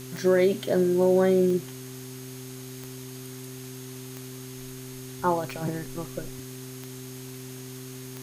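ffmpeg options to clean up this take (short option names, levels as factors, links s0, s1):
-af "adeclick=t=4,bandreject=f=128.8:t=h:w=4,bandreject=f=257.6:t=h:w=4,bandreject=f=386.4:t=h:w=4,bandreject=f=6500:w=30,afftdn=nr=30:nf=-40"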